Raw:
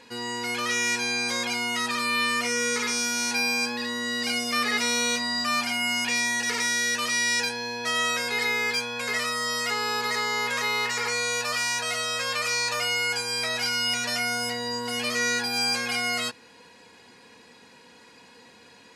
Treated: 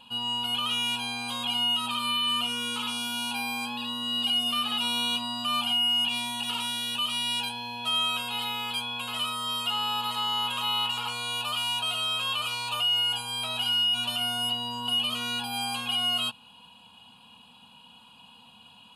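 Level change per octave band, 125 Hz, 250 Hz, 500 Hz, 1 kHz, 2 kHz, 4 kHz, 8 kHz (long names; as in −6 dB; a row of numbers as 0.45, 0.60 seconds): −0.5, −4.0, −13.0, −1.5, −10.0, +4.0, −11.0 decibels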